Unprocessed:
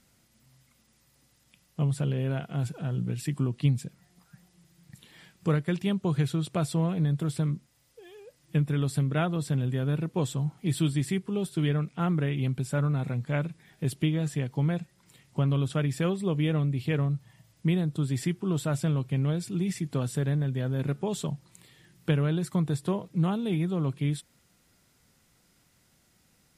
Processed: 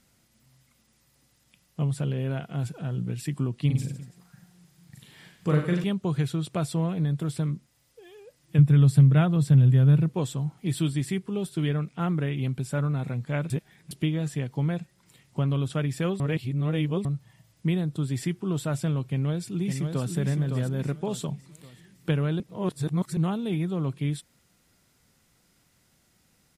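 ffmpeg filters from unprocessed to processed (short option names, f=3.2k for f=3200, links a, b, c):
-filter_complex "[0:a]asettb=1/sr,asplit=3[a][b][c];[a]atrim=end=3.664[d];[b]atrim=start=3.66:end=5.84,asetpts=PTS-STARTPTS,afade=t=in:d=0.004:c=qsin,afade=t=out:st=2.176:d=0.004:c=qsin,aecho=1:1:40|90|152.5|230.6|328.3:0.631|0.398|0.251|0.158|0.1,atrim=end_sample=96138[e];[c]atrim=start=5.836[f];[d][e]acrossfade=d=0.004:c1=hsin:c2=qsin[g];[g][f]acrossfade=d=0.004:c1=qsin:c2=hsin,asettb=1/sr,asplit=3[h][i][j];[h]atrim=end=8.584[k];[i]atrim=start=8.58:end=10.13,asetpts=PTS-STARTPTS,afade=t=in:d=0.004:c=qsin,afade=t=out:st=1.546:d=0.004:c=qsin,equalizer=f=130:w=1.5:g=11.5[l];[j]atrim=start=10.126[m];[k][l]acrossfade=d=0.004:c1=hsin:c2=qsin[n];[n][m]acrossfade=d=0.004:c1=qsin:c2=hsin,asplit=2[o][p];[p]afade=t=in:st=19.03:d=0.01,afade=t=out:st=20.12:d=0.01,aecho=0:1:560|1120|1680|2240|2800:0.530884|0.212354|0.0849415|0.0339766|0.0135906[q];[o][q]amix=inputs=2:normalize=0,asplit=7[r][s][t][u][v][w][x];[r]atrim=end=13.502[y];[s]atrim=start=13.498:end=13.912,asetpts=PTS-STARTPTS,areverse[z];[t]atrim=start=13.908:end=16.202[aa];[u]atrim=start=16.198:end=17.052,asetpts=PTS-STARTPTS,areverse[ab];[v]atrim=start=17.048:end=22.402[ac];[w]atrim=start=22.398:end=23.172,asetpts=PTS-STARTPTS,areverse[ad];[x]atrim=start=23.168[ae];[y][z]acrossfade=d=0.004:c1=hsin:c2=hsin[af];[af][aa]acrossfade=d=0.004:c1=hsin:c2=hsin[ag];[ag][ab]acrossfade=d=0.004:c1=hsin:c2=hsin[ah];[ah][ac]acrossfade=d=0.004:c1=hsin:c2=hsin[ai];[ai][ad]acrossfade=d=0.004:c1=hsin:c2=hsin[aj];[aj][ae]acrossfade=d=0.004:c1=hsin:c2=hsin"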